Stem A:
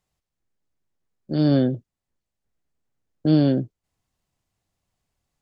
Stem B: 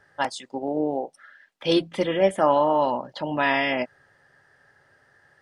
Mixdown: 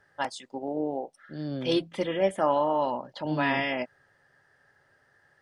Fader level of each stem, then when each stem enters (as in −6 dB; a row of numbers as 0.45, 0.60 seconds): −15.5, −5.0 decibels; 0.00, 0.00 seconds